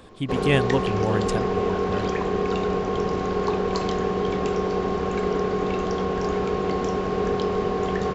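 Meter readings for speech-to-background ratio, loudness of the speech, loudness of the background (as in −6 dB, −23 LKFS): −2.0 dB, −27.0 LKFS, −25.0 LKFS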